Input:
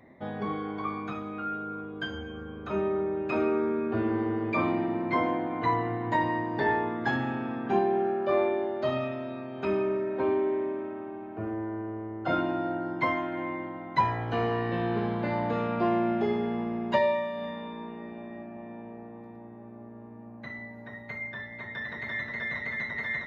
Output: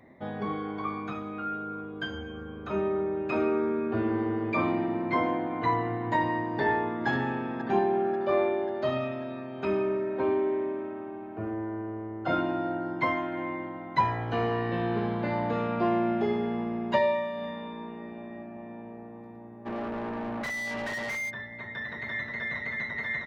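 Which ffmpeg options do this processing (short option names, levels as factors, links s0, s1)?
-filter_complex "[0:a]asplit=2[s0][s1];[s1]afade=t=in:st=6.46:d=0.01,afade=t=out:st=7.07:d=0.01,aecho=0:1:540|1080|1620|2160|2700|3240:0.281838|0.155011|0.0852561|0.0468908|0.02579|0.0141845[s2];[s0][s2]amix=inputs=2:normalize=0,asplit=3[s3][s4][s5];[s3]afade=t=out:st=19.65:d=0.02[s6];[s4]asplit=2[s7][s8];[s8]highpass=f=720:p=1,volume=44.7,asoftclip=type=tanh:threshold=0.0531[s9];[s7][s9]amix=inputs=2:normalize=0,lowpass=f=2600:p=1,volume=0.501,afade=t=in:st=19.65:d=0.02,afade=t=out:st=21.29:d=0.02[s10];[s5]afade=t=in:st=21.29:d=0.02[s11];[s6][s10][s11]amix=inputs=3:normalize=0"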